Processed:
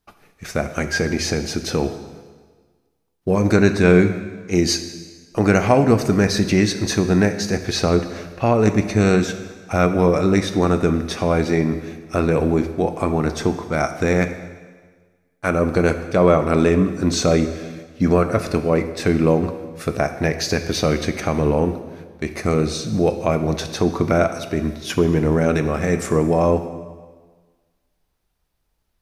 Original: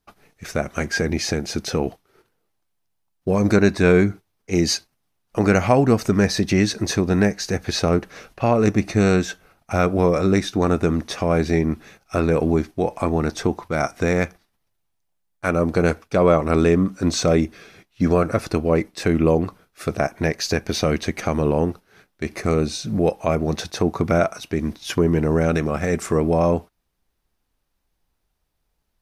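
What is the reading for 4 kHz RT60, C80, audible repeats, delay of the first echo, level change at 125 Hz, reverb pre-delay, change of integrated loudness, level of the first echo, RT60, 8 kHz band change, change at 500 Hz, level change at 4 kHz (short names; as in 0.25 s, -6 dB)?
1.4 s, 11.5 dB, none, none, +1.5 dB, 6 ms, +1.5 dB, none, 1.5 s, +1.5 dB, +1.5 dB, +1.5 dB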